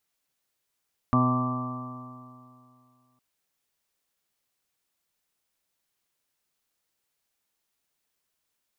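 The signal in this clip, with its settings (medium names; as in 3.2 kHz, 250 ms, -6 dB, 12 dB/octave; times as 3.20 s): stretched partials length 2.06 s, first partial 125 Hz, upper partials 2/-16/-19/-9/-11.5/-12.5/-9/0.5 dB, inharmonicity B 0.00093, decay 2.48 s, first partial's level -23 dB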